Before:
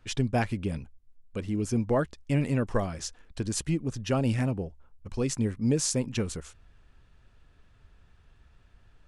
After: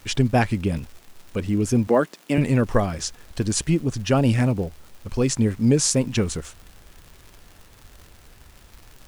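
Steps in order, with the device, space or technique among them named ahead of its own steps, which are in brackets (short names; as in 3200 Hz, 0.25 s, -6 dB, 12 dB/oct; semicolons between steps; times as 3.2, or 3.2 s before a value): vinyl LP (wow and flutter; crackle 140/s -43 dBFS; pink noise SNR 31 dB); 1.87–2.38 HPF 190 Hz 24 dB/oct; gain +7.5 dB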